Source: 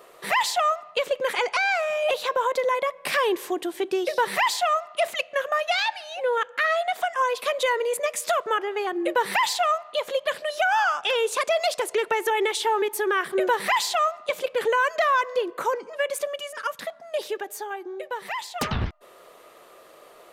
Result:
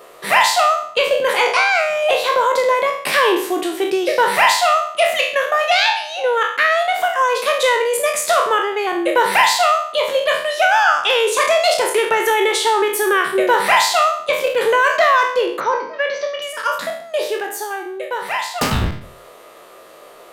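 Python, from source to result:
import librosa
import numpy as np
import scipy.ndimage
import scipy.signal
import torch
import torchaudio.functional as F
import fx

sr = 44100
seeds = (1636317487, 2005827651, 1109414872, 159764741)

y = fx.spec_trails(x, sr, decay_s=0.56)
y = fx.cheby_ripple(y, sr, hz=6100.0, ripple_db=3, at=(15.6, 16.42))
y = y * librosa.db_to_amplitude(6.0)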